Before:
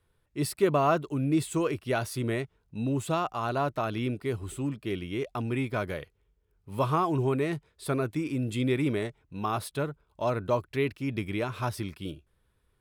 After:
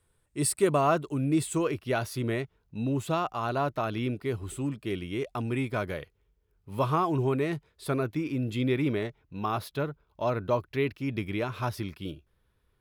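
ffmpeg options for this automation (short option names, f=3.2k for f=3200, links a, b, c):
-af "asetnsamples=n=441:p=0,asendcmd='0.81 equalizer g 4.5;1.58 equalizer g -6;4.5 equalizer g 2;5.81 equalizer g -4.5;8.03 equalizer g -14.5;10.94 equalizer g -8',equalizer=f=8.6k:t=o:w=0.42:g=14"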